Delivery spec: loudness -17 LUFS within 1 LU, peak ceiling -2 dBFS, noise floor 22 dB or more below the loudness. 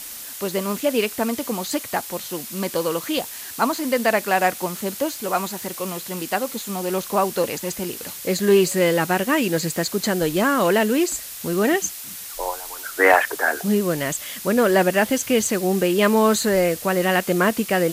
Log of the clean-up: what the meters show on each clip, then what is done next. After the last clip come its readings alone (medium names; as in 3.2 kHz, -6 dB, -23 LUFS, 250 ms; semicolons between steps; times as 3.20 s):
noise floor -35 dBFS; noise floor target -44 dBFS; loudness -21.5 LUFS; peak level -3.0 dBFS; loudness target -17.0 LUFS
-> noise reduction 9 dB, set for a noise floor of -35 dBFS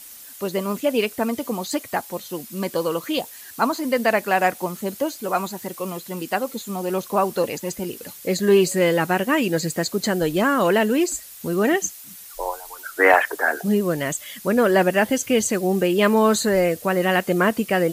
noise floor -41 dBFS; noise floor target -44 dBFS
-> noise reduction 6 dB, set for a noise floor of -41 dBFS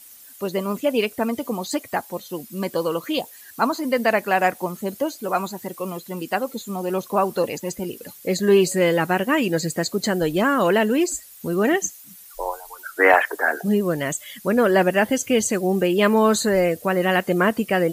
noise floor -45 dBFS; loudness -21.5 LUFS; peak level -3.0 dBFS; loudness target -17.0 LUFS
-> trim +4.5 dB; peak limiter -2 dBFS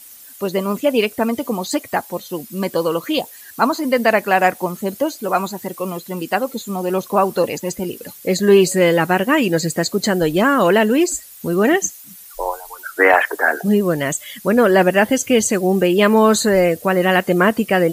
loudness -17.5 LUFS; peak level -2.0 dBFS; noise floor -40 dBFS